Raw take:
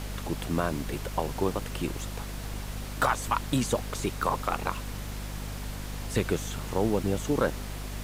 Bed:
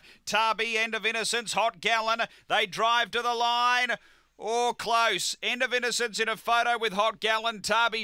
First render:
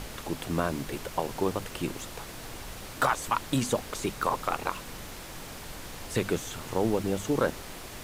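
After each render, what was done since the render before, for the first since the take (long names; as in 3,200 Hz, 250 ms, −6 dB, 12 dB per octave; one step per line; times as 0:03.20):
mains-hum notches 50/100/150/200/250 Hz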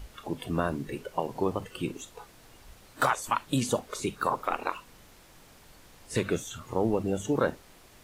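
noise reduction from a noise print 13 dB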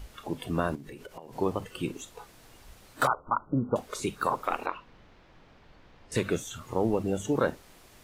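0:00.75–0:01.33: downward compressor 20 to 1, threshold −39 dBFS
0:03.07–0:03.76: linear-phase brick-wall low-pass 1,500 Hz
0:04.66–0:06.12: high-frequency loss of the air 240 metres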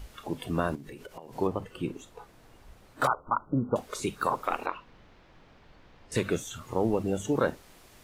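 0:01.47–0:03.04: high-shelf EQ 2,500 Hz −9.5 dB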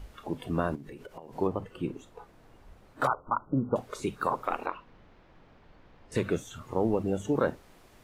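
high-shelf EQ 2,500 Hz −8 dB
mains-hum notches 60/120 Hz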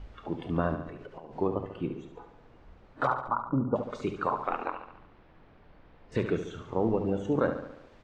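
high-frequency loss of the air 150 metres
repeating echo 71 ms, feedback 56%, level −9 dB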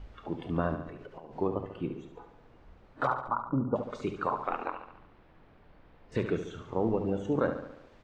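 level −1.5 dB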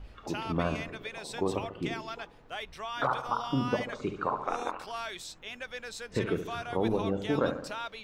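mix in bed −14 dB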